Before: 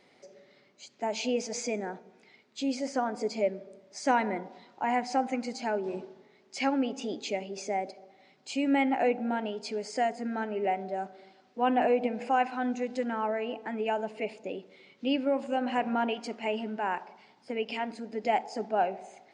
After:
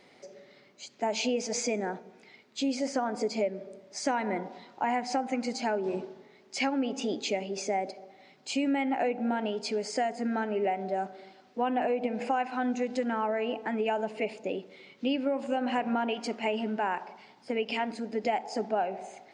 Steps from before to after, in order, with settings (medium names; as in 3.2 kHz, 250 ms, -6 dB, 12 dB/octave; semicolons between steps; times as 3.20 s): compression, threshold -29 dBFS, peak gain reduction 9.5 dB; trim +4 dB